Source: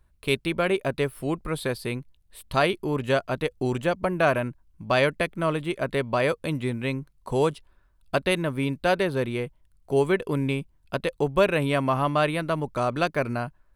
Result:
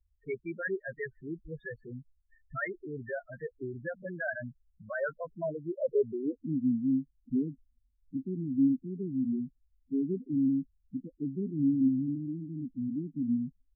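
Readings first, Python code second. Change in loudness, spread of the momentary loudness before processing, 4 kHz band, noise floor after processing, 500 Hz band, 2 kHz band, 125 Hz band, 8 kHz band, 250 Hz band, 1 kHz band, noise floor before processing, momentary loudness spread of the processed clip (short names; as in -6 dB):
-7.5 dB, 8 LU, under -40 dB, -73 dBFS, -12.5 dB, -11.5 dB, -11.0 dB, under -35 dB, -1.0 dB, -21.0 dB, -62 dBFS, 14 LU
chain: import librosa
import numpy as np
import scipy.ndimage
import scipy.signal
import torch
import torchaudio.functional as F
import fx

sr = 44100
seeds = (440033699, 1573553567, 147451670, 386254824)

y = fx.filter_sweep_lowpass(x, sr, from_hz=1800.0, to_hz=260.0, start_s=4.86, end_s=6.41, q=5.8)
y = fx.rotary_switch(y, sr, hz=5.5, then_hz=0.65, switch_at_s=6.84)
y = fx.spec_topn(y, sr, count=4)
y = y * librosa.db_to_amplitude(-8.5)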